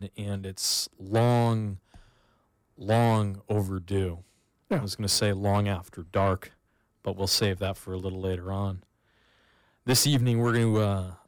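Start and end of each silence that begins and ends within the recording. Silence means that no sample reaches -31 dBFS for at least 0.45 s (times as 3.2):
1.74–2.86
4.14–4.71
6.43–7.07
8.75–9.87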